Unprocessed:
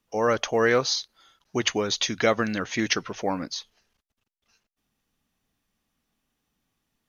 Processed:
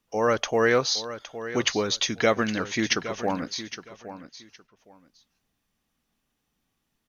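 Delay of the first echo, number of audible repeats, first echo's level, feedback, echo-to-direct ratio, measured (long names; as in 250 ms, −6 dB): 814 ms, 2, −13.0 dB, 20%, −13.0 dB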